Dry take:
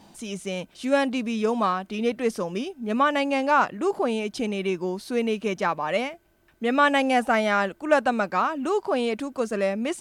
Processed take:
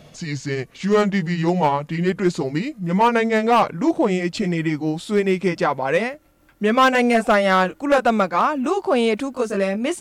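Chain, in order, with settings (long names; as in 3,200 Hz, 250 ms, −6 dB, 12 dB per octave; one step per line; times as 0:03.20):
pitch glide at a constant tempo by −5.5 semitones ending unshifted
hard clipping −16.5 dBFS, distortion −17 dB
level +7 dB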